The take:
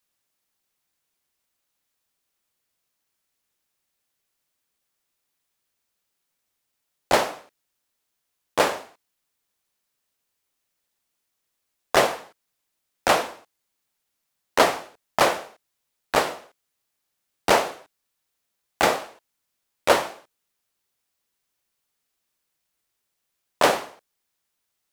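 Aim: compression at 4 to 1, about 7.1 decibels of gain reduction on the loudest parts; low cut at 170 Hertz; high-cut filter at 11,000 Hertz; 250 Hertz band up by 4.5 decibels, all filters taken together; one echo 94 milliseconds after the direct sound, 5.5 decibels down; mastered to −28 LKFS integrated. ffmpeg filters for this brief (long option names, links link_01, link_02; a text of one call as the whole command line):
ffmpeg -i in.wav -af "highpass=170,lowpass=11000,equalizer=frequency=250:width_type=o:gain=7,acompressor=threshold=-20dB:ratio=4,aecho=1:1:94:0.531,volume=-0.5dB" out.wav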